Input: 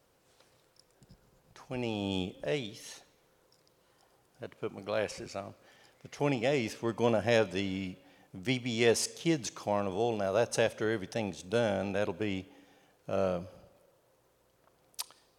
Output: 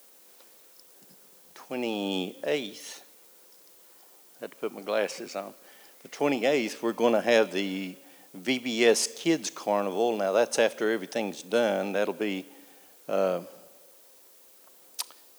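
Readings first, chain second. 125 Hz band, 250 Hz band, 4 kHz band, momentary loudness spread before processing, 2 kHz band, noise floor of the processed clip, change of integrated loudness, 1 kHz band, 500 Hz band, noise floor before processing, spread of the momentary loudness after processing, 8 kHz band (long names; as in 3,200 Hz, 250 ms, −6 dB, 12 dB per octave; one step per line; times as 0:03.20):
−6.5 dB, +4.0 dB, +5.0 dB, 16 LU, +5.0 dB, −56 dBFS, +4.5 dB, +5.0 dB, +5.0 dB, −69 dBFS, 17 LU, +5.0 dB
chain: background noise blue −61 dBFS
high-pass filter 210 Hz 24 dB per octave
level +5 dB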